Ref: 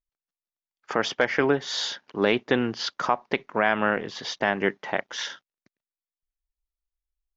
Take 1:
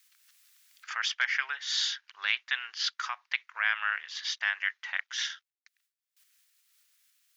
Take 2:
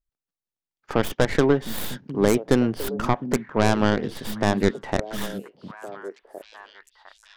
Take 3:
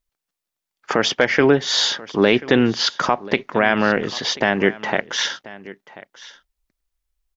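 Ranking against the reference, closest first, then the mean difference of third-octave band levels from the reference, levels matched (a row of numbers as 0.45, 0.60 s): 3, 2, 1; 3.0, 8.5, 13.0 dB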